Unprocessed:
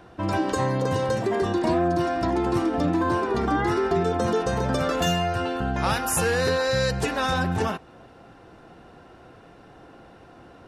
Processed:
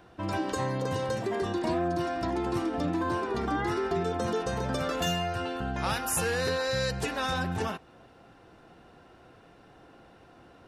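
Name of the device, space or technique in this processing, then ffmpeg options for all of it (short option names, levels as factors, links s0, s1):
presence and air boost: -af "equalizer=f=3200:t=o:w=1.8:g=2.5,highshelf=f=11000:g=5.5,volume=0.473"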